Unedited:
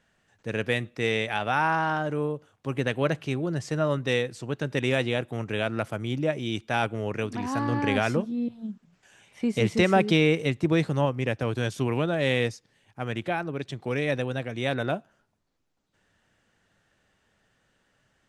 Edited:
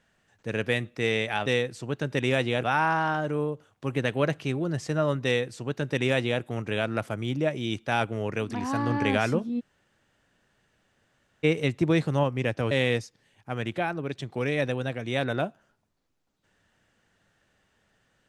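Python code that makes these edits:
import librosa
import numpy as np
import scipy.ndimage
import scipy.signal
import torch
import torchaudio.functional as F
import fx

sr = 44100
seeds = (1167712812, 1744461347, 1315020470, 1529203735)

y = fx.edit(x, sr, fx.duplicate(start_s=4.06, length_s=1.18, to_s=1.46),
    fx.room_tone_fill(start_s=8.42, length_s=1.84, crossfade_s=0.02),
    fx.cut(start_s=11.53, length_s=0.68), tone=tone)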